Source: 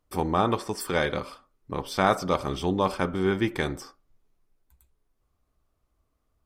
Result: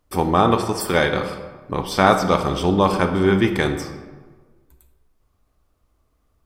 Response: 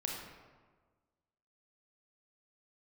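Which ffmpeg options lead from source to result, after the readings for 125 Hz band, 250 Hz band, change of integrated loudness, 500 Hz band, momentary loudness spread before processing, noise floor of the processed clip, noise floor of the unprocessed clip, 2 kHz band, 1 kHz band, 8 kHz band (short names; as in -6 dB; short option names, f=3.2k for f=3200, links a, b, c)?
+8.5 dB, +8.5 dB, +7.5 dB, +7.5 dB, 11 LU, -66 dBFS, -75 dBFS, +7.5 dB, +8.0 dB, +7.0 dB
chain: -filter_complex "[0:a]asplit=2[a][b];[1:a]atrim=start_sample=2205[c];[b][c]afir=irnorm=-1:irlink=0,volume=-3dB[d];[a][d]amix=inputs=2:normalize=0,volume=3dB"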